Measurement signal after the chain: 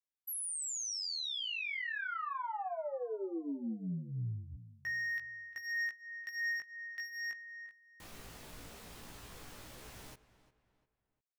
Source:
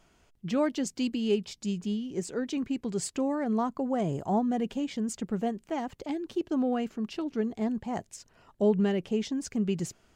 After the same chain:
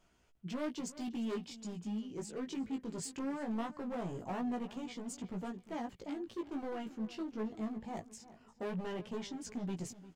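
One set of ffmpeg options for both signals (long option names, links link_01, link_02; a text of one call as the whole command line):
ffmpeg -i in.wav -filter_complex "[0:a]asoftclip=type=hard:threshold=-28.5dB,flanger=delay=16:depth=2.7:speed=0.2,asplit=2[link_01][link_02];[link_02]adelay=351,lowpass=frequency=3300:poles=1,volume=-16dB,asplit=2[link_03][link_04];[link_04]adelay=351,lowpass=frequency=3300:poles=1,volume=0.38,asplit=2[link_05][link_06];[link_06]adelay=351,lowpass=frequency=3300:poles=1,volume=0.38[link_07];[link_03][link_05][link_07]amix=inputs=3:normalize=0[link_08];[link_01][link_08]amix=inputs=2:normalize=0,volume=-4.5dB" out.wav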